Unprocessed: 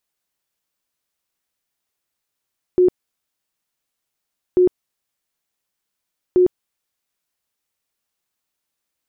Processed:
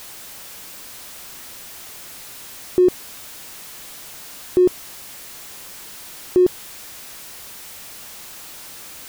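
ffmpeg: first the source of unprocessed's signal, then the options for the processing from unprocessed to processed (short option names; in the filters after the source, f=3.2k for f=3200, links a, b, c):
-f lavfi -i "aevalsrc='0.335*sin(2*PI*363*mod(t,1.79))*lt(mod(t,1.79),38/363)':d=5.37:s=44100"
-af "aeval=exprs='val(0)+0.5*0.0266*sgn(val(0))':c=same"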